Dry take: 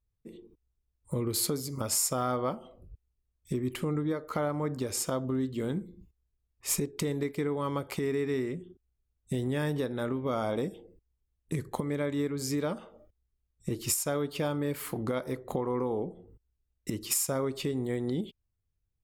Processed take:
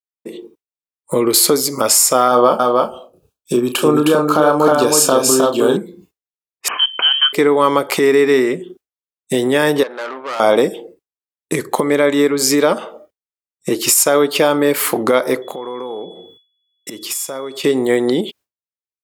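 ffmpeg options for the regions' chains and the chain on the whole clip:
ffmpeg -i in.wav -filter_complex "[0:a]asettb=1/sr,asplit=3[link_01][link_02][link_03];[link_01]atrim=end=2.284[link_04];[link_02]atrim=start=2.28:end=5.77,asetpts=PTS-STARTPTS,afade=type=in:duration=0.004:curve=qsin,afade=type=out:start_time=3.486:duration=0.004:curve=qsin,asuperstop=centerf=2000:order=4:qfactor=3,asplit=2[link_05][link_06];[link_06]adelay=33,volume=-7.5dB[link_07];[link_05][link_07]amix=inputs=2:normalize=0,atrim=end_sample=153909,aecho=1:1:312:0.631,atrim=end_sample=153909[link_08];[link_03]atrim=start=5.766[link_09];[link_04][link_08]acrossfade=duration=0.004:curve1=hsin:curve2=qsin[link_10];[link_10][link_09]acrossfade=duration=0.004:curve1=qsin:curve2=hsin,asettb=1/sr,asplit=3[link_11][link_12][link_13];[link_11]atrim=end=6.684[link_14];[link_12]atrim=start=6.68:end=7.33,asetpts=PTS-STARTPTS,afade=type=in:duration=0.004:curve=qsin,afade=type=out:start_time=0.646:duration=0.004:curve=qsin,highpass=frequency=380:width=0.5412,highpass=frequency=380:width=1.3066,lowpass=frequency=3000:width_type=q:width=0.5098,lowpass=frequency=3000:width_type=q:width=0.6013,lowpass=frequency=3000:width_type=q:width=0.9,lowpass=frequency=3000:width_type=q:width=2.563,afreqshift=-3500[link_15];[link_13]atrim=start=7.326[link_16];[link_14][link_15]acrossfade=duration=0.004:curve1=hsin:curve2=qsin[link_17];[link_17][link_16]acrossfade=duration=0.004:curve1=qsin:curve2=hsin,asettb=1/sr,asplit=3[link_18][link_19][link_20];[link_18]atrim=end=9.834[link_21];[link_19]atrim=start=9.83:end=10.4,asetpts=PTS-STARTPTS,afade=type=in:duration=0.004:curve=qsin,afade=type=out:start_time=0.566:duration=0.004:curve=qsin,bandpass=frequency=1200:width_type=q:width=1.1,aeval=exprs='(tanh(126*val(0)+0.55)-tanh(0.55))/126':channel_layout=same[link_22];[link_20]atrim=start=10.396[link_23];[link_21][link_22]acrossfade=duration=0.004:curve1=hsin:curve2=qsin[link_24];[link_24][link_23]acrossfade=duration=0.004:curve1=qsin:curve2=hsin,asettb=1/sr,asplit=3[link_25][link_26][link_27];[link_25]atrim=end=15.424[link_28];[link_26]atrim=start=15.42:end=17.64,asetpts=PTS-STARTPTS,afade=type=in:duration=0.004:curve=qsin,afade=type=out:start_time=2.216:duration=0.004:curve=qsin,highpass=51,acompressor=threshold=-49dB:ratio=2.5:attack=3.2:release=140:knee=1:detection=peak,aeval=exprs='val(0)+0.000708*sin(2*PI*3400*n/s)':channel_layout=same[link_29];[link_27]atrim=start=17.636[link_30];[link_28][link_29]acrossfade=duration=0.004:curve1=hsin:curve2=qsin[link_31];[link_31][link_30]acrossfade=duration=0.004:curve1=qsin:curve2=hsin,agate=range=-33dB:threshold=-51dB:ratio=3:detection=peak,highpass=380,alimiter=level_in=22.5dB:limit=-1dB:release=50:level=0:latency=1,volume=-1dB" out.wav

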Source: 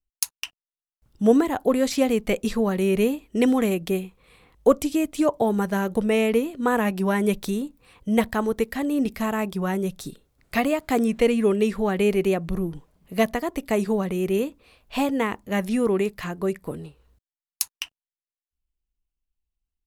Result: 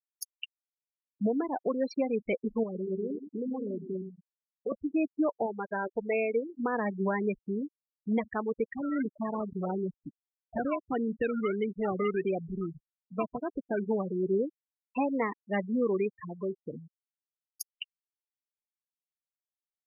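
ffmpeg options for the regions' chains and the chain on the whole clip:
ffmpeg -i in.wav -filter_complex "[0:a]asettb=1/sr,asplit=3[link_01][link_02][link_03];[link_01]atrim=end=2.634[link_04];[link_02]atrim=start=2.63:end=4.72,asetpts=PTS-STARTPTS,afade=type=in:duration=0.004:curve=qsin,afade=type=out:start_time=2.086:duration=0.004:curve=qsin,acompressor=threshold=-25dB:ratio=16:attack=3.2:release=140:knee=1:detection=peak,aecho=1:1:119|238|357|476|595|714:0.398|0.215|0.116|0.0627|0.0339|0.0183,atrim=end_sample=92169[link_05];[link_03]atrim=start=4.716[link_06];[link_04][link_05]acrossfade=duration=0.004:curve1=hsin:curve2=qsin[link_07];[link_07][link_06]acrossfade=duration=0.004:curve1=qsin:curve2=hsin,asettb=1/sr,asplit=3[link_08][link_09][link_10];[link_08]atrim=end=5.464[link_11];[link_09]atrim=start=5.46:end=6.49,asetpts=PTS-STARTPTS,afade=type=in:duration=0.004:curve=qsin,afade=type=out:start_time=1.026:duration=0.004:curve=qsin,lowpass=3100,equalizer=frequency=180:width_type=o:width=2:gain=-10[link_12];[link_10]atrim=start=6.486[link_13];[link_11][link_12]acrossfade=duration=0.004:curve1=hsin:curve2=qsin[link_14];[link_14][link_13]acrossfade=duration=0.004:curve1=qsin:curve2=hsin,asettb=1/sr,asplit=3[link_15][link_16][link_17];[link_15]atrim=end=8.754[link_18];[link_16]atrim=start=8.75:end=13.89,asetpts=PTS-STARTPTS,afade=type=in:duration=0.004:curve=qsin,afade=type=out:start_time=5.136:duration=0.004:curve=qsin,acompressor=threshold=-23dB:ratio=2:attack=3.2:release=140:knee=1:detection=peak,acrusher=samples=21:mix=1:aa=0.000001:lfo=1:lforange=12.6:lforate=1.6[link_19];[link_17]atrim=start=13.886[link_20];[link_18][link_19]acrossfade=duration=0.004:curve1=hsin:curve2=qsin[link_21];[link_21][link_20]acrossfade=duration=0.004:curve1=qsin:curve2=hsin,asettb=1/sr,asplit=3[link_22][link_23][link_24];[link_22]atrim=end=16.114[link_25];[link_23]atrim=start=16.11:end=16.79,asetpts=PTS-STARTPTS,afade=type=in:duration=0.004:curve=qsin,afade=type=out:start_time=0.676:duration=0.004:curve=qsin,aeval=exprs='val(0)+0.5*0.01*sgn(val(0))':channel_layout=same,highpass=41,acompressor=threshold=-28dB:ratio=2:attack=3.2:release=140:knee=1:detection=peak[link_26];[link_24]atrim=start=16.786[link_27];[link_25][link_26]acrossfade=duration=0.004:curve1=hsin:curve2=qsin[link_28];[link_28][link_27]acrossfade=duration=0.004:curve1=qsin:curve2=hsin,afftfilt=real='re*gte(hypot(re,im),0.112)':imag='im*gte(hypot(re,im),0.112)':win_size=1024:overlap=0.75,highpass=frequency=270:poles=1,alimiter=limit=-18dB:level=0:latency=1:release=362,volume=-2dB" out.wav

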